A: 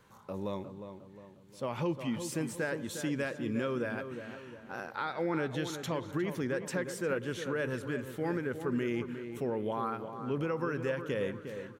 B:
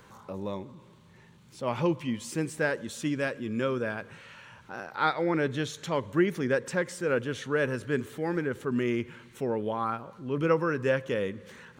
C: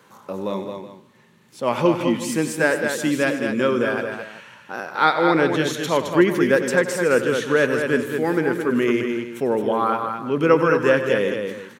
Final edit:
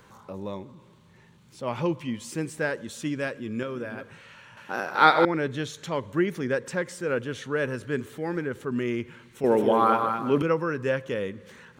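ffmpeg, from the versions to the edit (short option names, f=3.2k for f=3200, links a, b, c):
-filter_complex "[2:a]asplit=2[a][b];[1:a]asplit=4[c][d][e][f];[c]atrim=end=3.632[g];[0:a]atrim=start=3.628:end=4.032[h];[d]atrim=start=4.028:end=4.572[i];[a]atrim=start=4.568:end=5.252[j];[e]atrim=start=5.248:end=9.442[k];[b]atrim=start=9.438:end=10.422[l];[f]atrim=start=10.418[m];[g][h]acrossfade=d=0.004:c1=hsin:c2=hsin[n];[n][i]acrossfade=d=0.004:c1=hsin:c2=hsin[o];[o][j]acrossfade=d=0.004:c1=hsin:c2=hsin[p];[p][k]acrossfade=d=0.004:c1=hsin:c2=hsin[q];[q][l]acrossfade=d=0.004:c1=hsin:c2=hsin[r];[r][m]acrossfade=d=0.004:c1=hsin:c2=hsin"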